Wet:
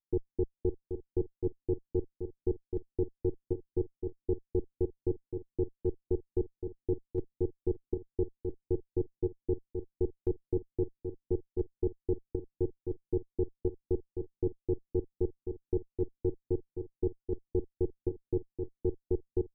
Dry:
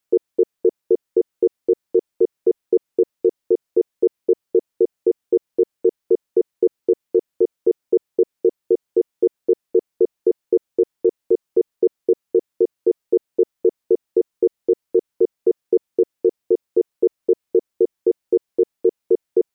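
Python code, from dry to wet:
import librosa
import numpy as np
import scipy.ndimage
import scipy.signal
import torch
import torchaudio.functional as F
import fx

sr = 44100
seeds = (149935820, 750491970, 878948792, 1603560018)

y = fx.lower_of_two(x, sr, delay_ms=0.54)
y = fx.ladder_lowpass(y, sr, hz=370.0, resonance_pct=30)
y = fx.volume_shaper(y, sr, bpm=136, per_beat=1, depth_db=-8, release_ms=119.0, shape='slow start')
y = y + 10.0 ** (-20.0 / 20.0) * np.pad(y, (int(569 * sr / 1000.0), 0))[:len(y)]
y = y * 10.0 ** (-2.5 / 20.0)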